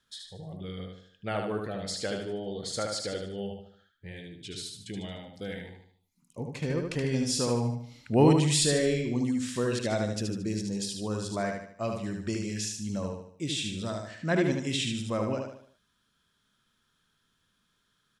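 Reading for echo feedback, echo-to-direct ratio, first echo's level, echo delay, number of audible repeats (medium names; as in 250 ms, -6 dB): 42%, -3.0 dB, -4.0 dB, 75 ms, 5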